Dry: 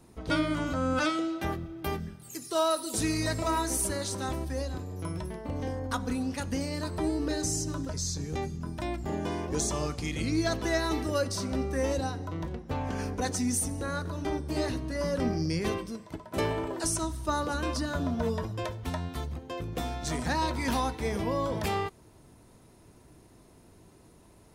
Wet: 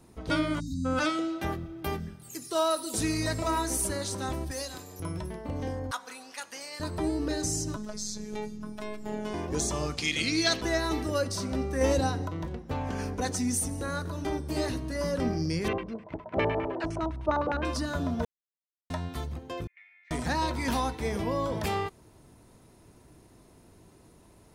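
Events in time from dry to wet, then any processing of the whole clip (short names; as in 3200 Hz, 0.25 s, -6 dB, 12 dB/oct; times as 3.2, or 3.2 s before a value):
0.6–0.85 spectral delete 280–3600 Hz
4.51–5 tilt +3.5 dB/oct
5.91–6.8 HPF 920 Hz
7.76–9.34 robotiser 212 Hz
9.97–10.61 weighting filter D
11.81–12.28 gain +4.5 dB
13.72–15.12 high shelf 8300 Hz +5.5 dB
15.68–17.65 LFO low-pass square 9.8 Hz 740–2400 Hz
18.25–18.9 mute
19.67–20.11 Butterworth band-pass 2100 Hz, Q 5.7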